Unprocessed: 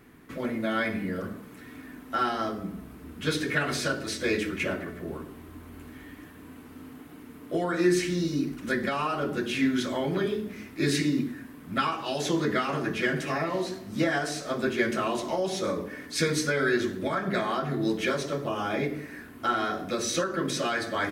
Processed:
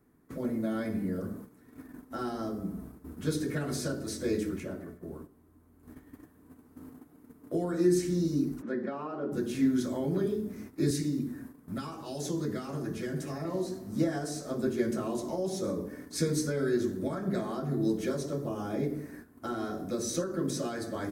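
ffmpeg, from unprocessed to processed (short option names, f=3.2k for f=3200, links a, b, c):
-filter_complex "[0:a]asplit=3[a][b][c];[a]afade=t=out:st=8.61:d=0.02[d];[b]highpass=250,lowpass=2.2k,afade=t=in:st=8.61:d=0.02,afade=t=out:st=9.31:d=0.02[e];[c]afade=t=in:st=9.31:d=0.02[f];[d][e][f]amix=inputs=3:normalize=0,asettb=1/sr,asplit=3[g][h][i];[g]atrim=end=10.904[j];[h]atrim=start=10.9:end=13.45,asetpts=PTS-STARTPTS,afade=t=in:d=0.004:c=qsin,afade=t=out:st=2.546:d=0.004:c=qsin,acrossover=split=140|3000[k][l][m];[l]acompressor=threshold=-37dB:ratio=1.5:attack=3.2:release=140:knee=2.83:detection=peak[n];[k][n][m]amix=inputs=3:normalize=0[o];[i]atrim=start=13.446[p];[j][o]acrossfade=d=0.004:c1=hsin:c2=qsin[q];[q][p]acrossfade=d=0.004:c1=qsin:c2=hsin,asplit=3[r][s][t];[r]atrim=end=4.602[u];[s]atrim=start=4.598:end=5.832,asetpts=PTS-STARTPTS,volume=-5dB[v];[t]atrim=start=5.828[w];[u][v]acrossfade=d=0.004:c1=hsin:c2=hsin[x];[x][w]acrossfade=d=0.004:c1=hsin:c2=hsin,equalizer=f=2.8k:t=o:w=1.5:g=-14.5,agate=range=-11dB:threshold=-44dB:ratio=16:detection=peak,acrossover=split=480|3000[y][z][aa];[z]acompressor=threshold=-55dB:ratio=1.5[ab];[y][ab][aa]amix=inputs=3:normalize=0"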